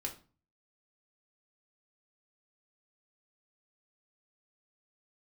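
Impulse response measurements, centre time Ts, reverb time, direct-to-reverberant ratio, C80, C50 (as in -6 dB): 13 ms, 0.35 s, 0.5 dB, 17.5 dB, 12.0 dB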